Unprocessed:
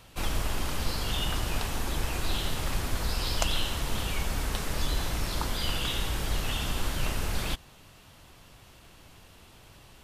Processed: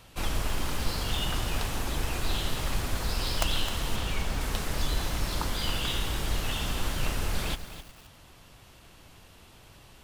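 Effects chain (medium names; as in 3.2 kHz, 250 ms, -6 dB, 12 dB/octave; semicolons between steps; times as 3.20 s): tracing distortion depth 0.074 ms; 3.96–4.41 s: treble shelf 10 kHz -9.5 dB; bit-crushed delay 261 ms, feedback 35%, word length 7-bit, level -11 dB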